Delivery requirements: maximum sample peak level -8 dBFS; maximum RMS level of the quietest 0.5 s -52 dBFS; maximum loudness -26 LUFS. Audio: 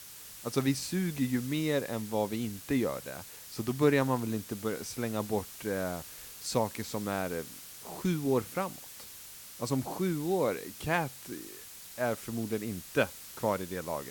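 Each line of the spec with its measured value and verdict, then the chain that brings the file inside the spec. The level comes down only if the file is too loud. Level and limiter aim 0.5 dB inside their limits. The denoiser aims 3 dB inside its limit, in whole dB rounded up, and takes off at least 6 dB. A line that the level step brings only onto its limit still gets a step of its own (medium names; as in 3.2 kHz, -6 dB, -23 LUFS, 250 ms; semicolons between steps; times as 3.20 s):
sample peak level -13.0 dBFS: pass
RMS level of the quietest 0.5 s -48 dBFS: fail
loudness -33.0 LUFS: pass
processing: noise reduction 7 dB, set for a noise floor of -48 dBFS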